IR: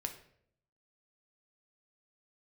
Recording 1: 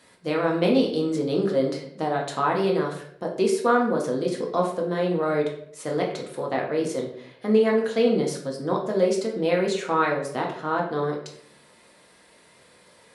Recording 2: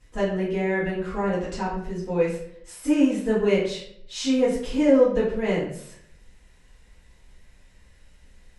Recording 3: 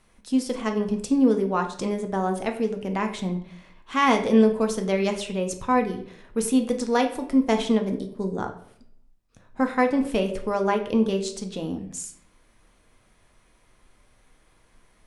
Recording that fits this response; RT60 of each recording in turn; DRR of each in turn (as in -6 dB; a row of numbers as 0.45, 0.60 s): 3; 0.65, 0.65, 0.65 s; -1.0, -10.5, 4.5 dB